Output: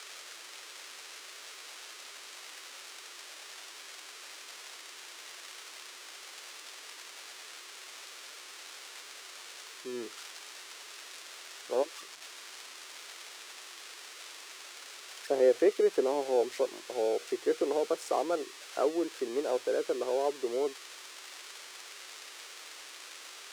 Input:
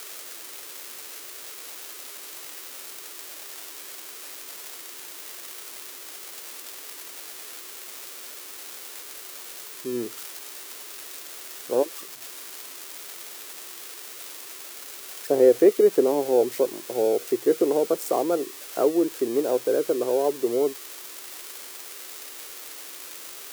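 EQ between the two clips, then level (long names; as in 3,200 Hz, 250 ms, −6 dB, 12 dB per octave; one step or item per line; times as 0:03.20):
high-pass filter 1,000 Hz 6 dB per octave
high-frequency loss of the air 77 metres
0.0 dB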